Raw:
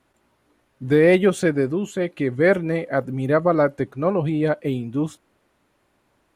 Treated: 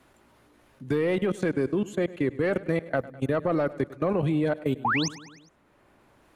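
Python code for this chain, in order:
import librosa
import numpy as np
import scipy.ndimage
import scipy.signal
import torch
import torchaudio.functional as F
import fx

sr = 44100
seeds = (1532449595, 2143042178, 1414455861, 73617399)

y = fx.spec_paint(x, sr, seeds[0], shape='rise', start_s=4.84, length_s=0.25, low_hz=720.0, high_hz=7100.0, level_db=-22.0)
y = 10.0 ** (-8.0 / 20.0) * np.tanh(y / 10.0 ** (-8.0 / 20.0))
y = fx.level_steps(y, sr, step_db=24)
y = fx.echo_feedback(y, sr, ms=102, feedback_pct=54, wet_db=-19)
y = fx.band_squash(y, sr, depth_pct=40)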